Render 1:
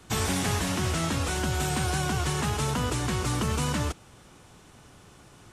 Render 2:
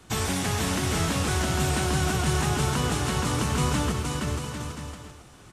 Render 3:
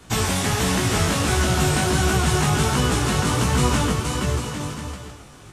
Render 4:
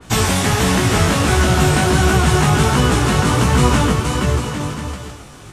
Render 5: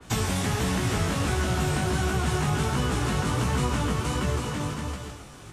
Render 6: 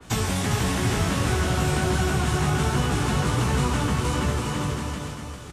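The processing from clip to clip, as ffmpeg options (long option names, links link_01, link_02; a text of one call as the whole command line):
ffmpeg -i in.wav -af "aecho=1:1:470|799|1029|1191|1303:0.631|0.398|0.251|0.158|0.1" out.wav
ffmpeg -i in.wav -af "flanger=delay=15.5:depth=4.7:speed=1.4,volume=8.5dB" out.wav
ffmpeg -i in.wav -af "adynamicequalizer=threshold=0.00891:dfrequency=3100:dqfactor=0.7:tfrequency=3100:tqfactor=0.7:attack=5:release=100:ratio=0.375:range=2:mode=cutabove:tftype=highshelf,volume=6dB" out.wav
ffmpeg -i in.wav -filter_complex "[0:a]acrossover=split=190|430[link_01][link_02][link_03];[link_01]acompressor=threshold=-19dB:ratio=4[link_04];[link_02]acompressor=threshold=-27dB:ratio=4[link_05];[link_03]acompressor=threshold=-23dB:ratio=4[link_06];[link_04][link_05][link_06]amix=inputs=3:normalize=0,volume=-6.5dB" out.wav
ffmpeg -i in.wav -af "aecho=1:1:403:0.501,volume=1.5dB" out.wav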